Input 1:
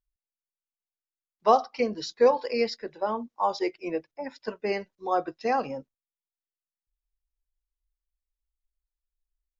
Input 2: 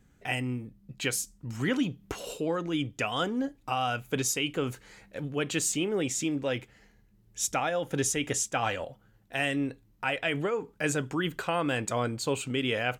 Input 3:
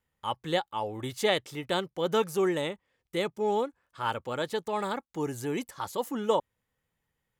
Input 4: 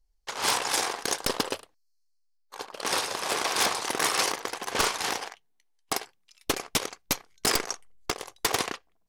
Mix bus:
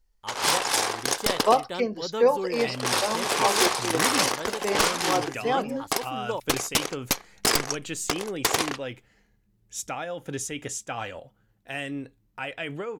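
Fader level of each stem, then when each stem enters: 0.0, −4.0, −5.5, +2.5 decibels; 0.00, 2.35, 0.00, 0.00 seconds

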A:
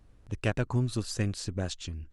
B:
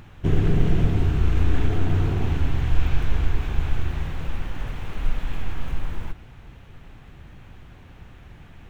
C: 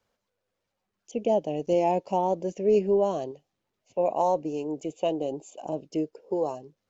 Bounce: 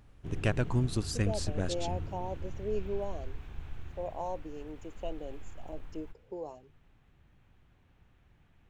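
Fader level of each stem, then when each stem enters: −1.0, −19.0, −13.0 decibels; 0.00, 0.00, 0.00 seconds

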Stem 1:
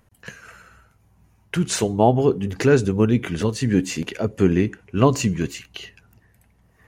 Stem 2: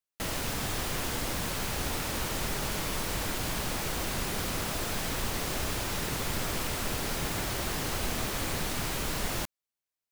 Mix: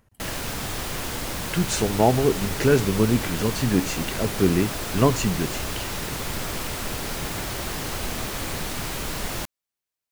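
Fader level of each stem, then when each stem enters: −2.5, +2.5 decibels; 0.00, 0.00 seconds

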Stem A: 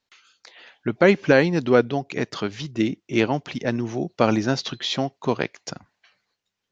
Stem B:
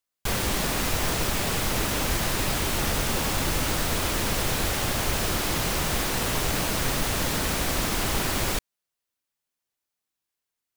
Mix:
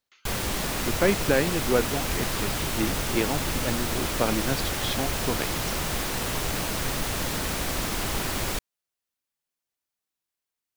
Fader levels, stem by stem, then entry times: −6.5, −2.5 decibels; 0.00, 0.00 seconds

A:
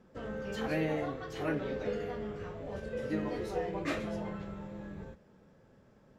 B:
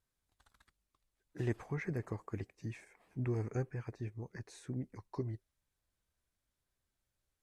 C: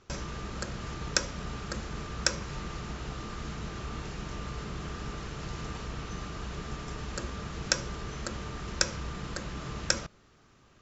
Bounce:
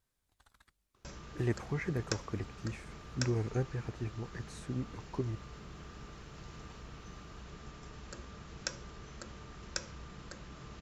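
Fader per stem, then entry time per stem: muted, +3.0 dB, −11.0 dB; muted, 0.00 s, 0.95 s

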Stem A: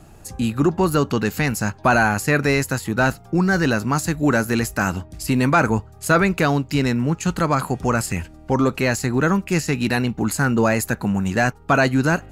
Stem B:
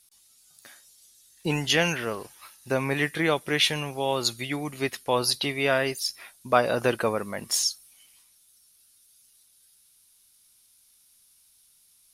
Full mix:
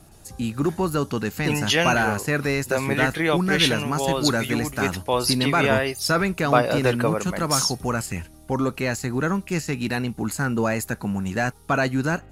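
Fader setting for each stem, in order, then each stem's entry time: −5.0, +2.0 decibels; 0.00, 0.00 seconds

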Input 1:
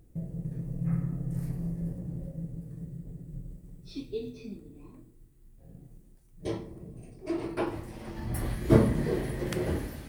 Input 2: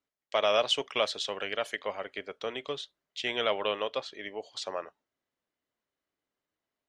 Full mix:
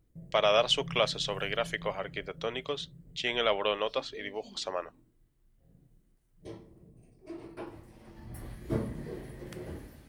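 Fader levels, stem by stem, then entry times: −11.5, +1.0 decibels; 0.00, 0.00 seconds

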